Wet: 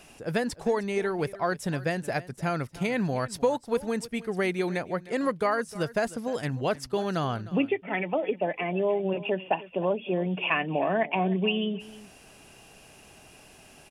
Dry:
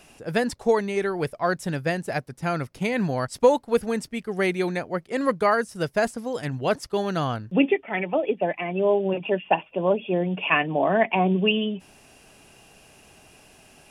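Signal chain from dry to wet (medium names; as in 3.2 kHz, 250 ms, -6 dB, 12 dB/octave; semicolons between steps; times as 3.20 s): compression 2:1, threshold -26 dBFS, peak gain reduction 8.5 dB; delay 307 ms -18 dB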